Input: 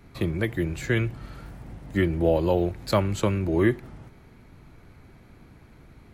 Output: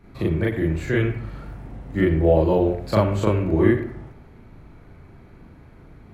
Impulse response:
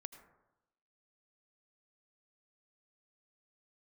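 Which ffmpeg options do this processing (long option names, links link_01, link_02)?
-filter_complex "[0:a]highshelf=frequency=2600:gain=-10,asplit=2[link_01][link_02];[1:a]atrim=start_sample=2205,asetrate=70560,aresample=44100,adelay=38[link_03];[link_02][link_03]afir=irnorm=-1:irlink=0,volume=12dB[link_04];[link_01][link_04]amix=inputs=2:normalize=0"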